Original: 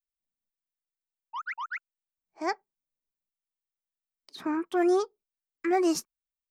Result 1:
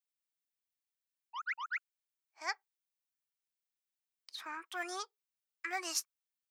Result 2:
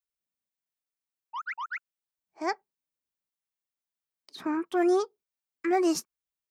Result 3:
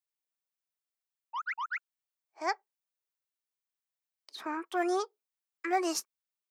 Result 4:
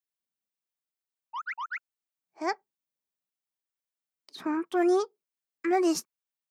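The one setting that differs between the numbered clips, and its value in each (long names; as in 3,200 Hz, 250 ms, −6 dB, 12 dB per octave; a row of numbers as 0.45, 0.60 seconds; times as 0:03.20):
high-pass filter, corner frequency: 1,500, 43, 540, 110 Hertz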